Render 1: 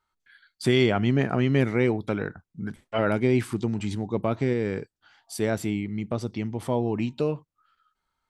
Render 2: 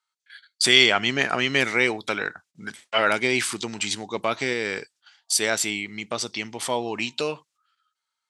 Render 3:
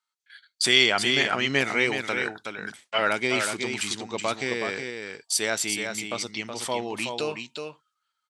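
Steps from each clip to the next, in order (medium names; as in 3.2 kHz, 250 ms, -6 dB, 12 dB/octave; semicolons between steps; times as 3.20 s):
gate -55 dBFS, range -13 dB; frequency weighting ITU-R 468; trim +5.5 dB
delay 372 ms -6 dB; trim -3 dB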